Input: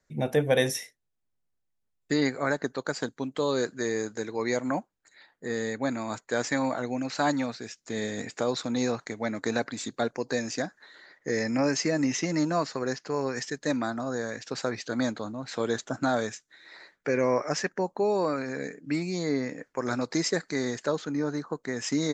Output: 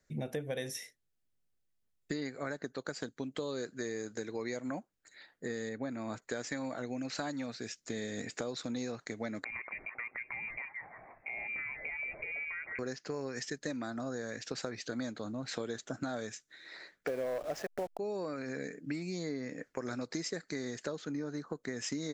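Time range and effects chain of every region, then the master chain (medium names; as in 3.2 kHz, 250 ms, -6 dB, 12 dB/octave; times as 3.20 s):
5.69–6.22 s: treble shelf 3.4 kHz -10 dB + tape noise reduction on one side only decoder only
9.44–12.79 s: repeats whose band climbs or falls 162 ms, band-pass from 680 Hz, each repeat 0.7 oct, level -9.5 dB + compression 5:1, threshold -36 dBFS + frequency inversion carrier 2.6 kHz
17.07–17.99 s: send-on-delta sampling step -32 dBFS + peaking EQ 660 Hz +15 dB 1.1 oct + hard clipper -11 dBFS
whole clip: peaking EQ 940 Hz -6 dB 0.72 oct; compression 6:1, threshold -35 dBFS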